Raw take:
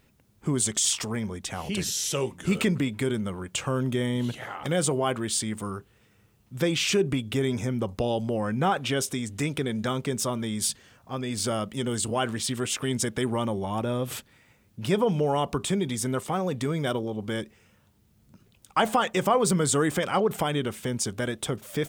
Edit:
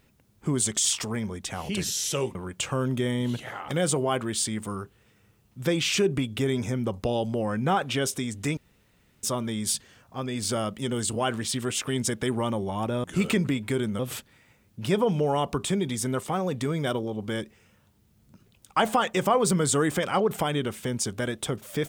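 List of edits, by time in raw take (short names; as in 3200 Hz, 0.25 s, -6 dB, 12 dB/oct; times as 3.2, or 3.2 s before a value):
2.35–3.3 move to 13.99
9.52–10.18 room tone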